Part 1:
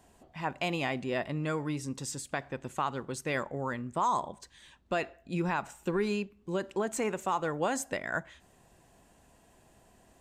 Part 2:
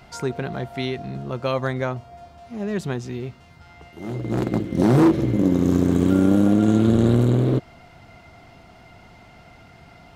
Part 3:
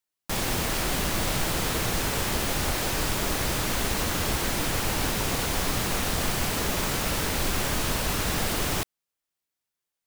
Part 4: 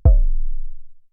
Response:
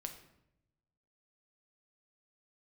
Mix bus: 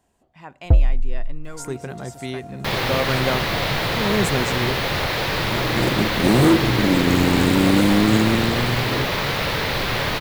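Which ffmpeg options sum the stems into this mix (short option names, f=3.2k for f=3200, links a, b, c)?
-filter_complex "[0:a]volume=-6dB[a];[1:a]highshelf=f=6.2k:t=q:w=1.5:g=9.5,dynaudnorm=f=280:g=13:m=11.5dB,adelay=1450,volume=-4dB,afade=t=out:st=8.16:d=0.38:silence=0.421697[b];[2:a]equalizer=f=125:t=o:w=1:g=11,equalizer=f=500:t=o:w=1:g=9,equalizer=f=1k:t=o:w=1:g=6,equalizer=f=2k:t=o:w=1:g=9,equalizer=f=4k:t=o:w=1:g=11,equalizer=f=8k:t=o:w=1:g=-10,adelay=2350,volume=-3dB[c];[3:a]adelay=650,volume=-1dB[d];[a][b][c][d]amix=inputs=4:normalize=0,asoftclip=type=hard:threshold=-7dB"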